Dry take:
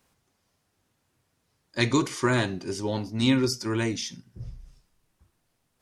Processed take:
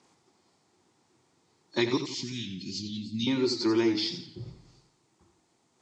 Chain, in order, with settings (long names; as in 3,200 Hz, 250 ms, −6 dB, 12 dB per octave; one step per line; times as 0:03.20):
hearing-aid frequency compression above 3,500 Hz 1.5 to 1
downward compressor 4 to 1, threshold −33 dBFS, peak gain reduction 13 dB
dynamic equaliser 3,600 Hz, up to +5 dB, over −54 dBFS, Q 0.98
0:01.97–0:03.27: Chebyshev band-stop filter 220–2,700 Hz, order 3
loudspeaker in its box 160–9,300 Hz, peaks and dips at 350 Hz +8 dB, 580 Hz −5 dB, 850 Hz +5 dB, 1,600 Hz −6 dB, 2,800 Hz −5 dB
0:03.92–0:04.48: notch comb filter 230 Hz
feedback echo with a swinging delay time 87 ms, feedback 43%, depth 111 cents, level −10 dB
level +5.5 dB